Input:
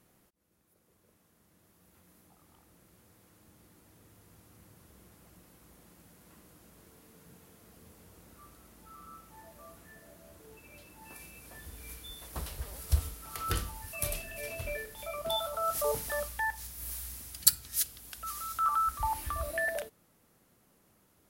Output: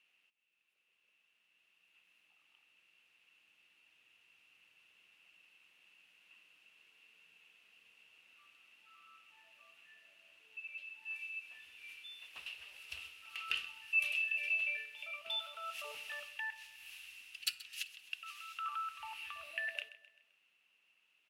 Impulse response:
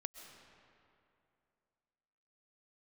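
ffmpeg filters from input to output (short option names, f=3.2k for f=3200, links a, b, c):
-filter_complex "[0:a]bandpass=f=2.7k:t=q:w=15:csg=0,asplit=2[a][b];[b]aecho=0:1:130|260|390|520:0.141|0.0678|0.0325|0.0156[c];[a][c]amix=inputs=2:normalize=0,volume=15.5dB"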